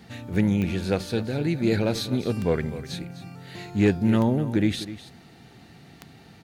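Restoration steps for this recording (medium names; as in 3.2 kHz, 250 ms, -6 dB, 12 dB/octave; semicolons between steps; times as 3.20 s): clip repair -12 dBFS; de-click; inverse comb 253 ms -14 dB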